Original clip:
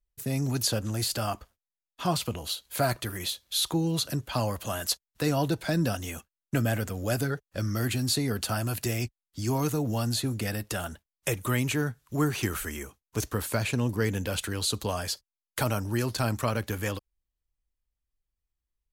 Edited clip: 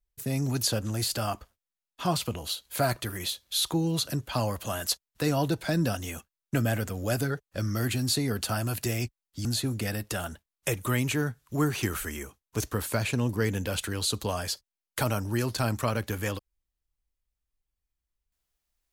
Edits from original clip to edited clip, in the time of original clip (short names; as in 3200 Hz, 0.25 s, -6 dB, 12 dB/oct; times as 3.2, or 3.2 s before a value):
9.45–10.05 cut